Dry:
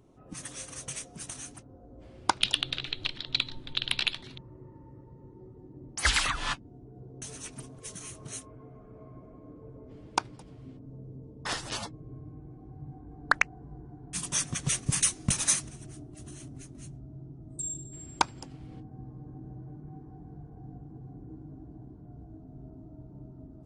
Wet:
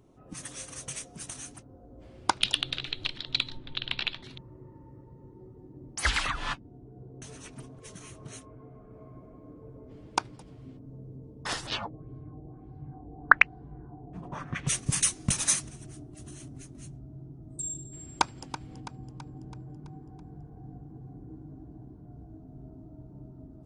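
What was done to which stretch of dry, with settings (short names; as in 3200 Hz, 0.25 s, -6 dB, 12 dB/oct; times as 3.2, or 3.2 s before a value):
3.57–4.23 air absorption 150 m
6.05–8.91 high shelf 5100 Hz -11 dB
11.66–14.66 LFO low-pass sine 2.5 Hz -> 0.58 Hz 620–4200 Hz
18.2–18.6 echo throw 0.33 s, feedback 55%, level -13 dB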